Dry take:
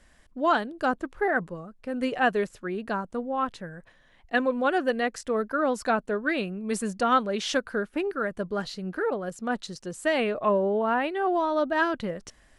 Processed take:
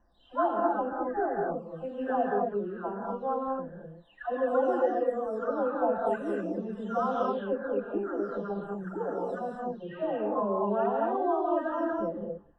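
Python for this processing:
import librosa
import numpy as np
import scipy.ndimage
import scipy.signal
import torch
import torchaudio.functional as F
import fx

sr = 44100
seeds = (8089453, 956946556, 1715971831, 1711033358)

y = fx.spec_delay(x, sr, highs='early', ms=691)
y = np.convolve(y, np.full(20, 1.0 / 20))[:len(y)]
y = fx.peak_eq(y, sr, hz=710.0, db=8.0, octaves=2.0)
y = fx.rev_gated(y, sr, seeds[0], gate_ms=270, shape='rising', drr_db=-1.0)
y = y * 10.0 ** (-8.0 / 20.0)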